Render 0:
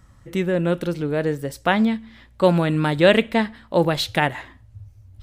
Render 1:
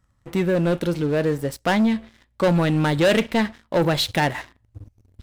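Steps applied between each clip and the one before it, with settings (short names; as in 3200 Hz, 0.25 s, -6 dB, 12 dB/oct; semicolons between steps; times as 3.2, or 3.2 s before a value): sample leveller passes 3; gain -8.5 dB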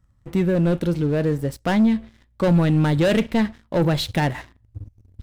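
low shelf 280 Hz +10 dB; gain -4 dB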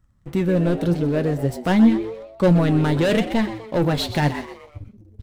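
flange 0.88 Hz, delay 2.7 ms, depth 8.3 ms, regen +61%; frequency-shifting echo 0.125 s, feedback 44%, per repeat +110 Hz, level -12.5 dB; gain +4.5 dB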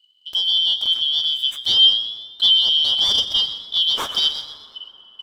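four-band scrambler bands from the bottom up 3412; plate-style reverb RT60 3.8 s, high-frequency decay 0.4×, DRR 16 dB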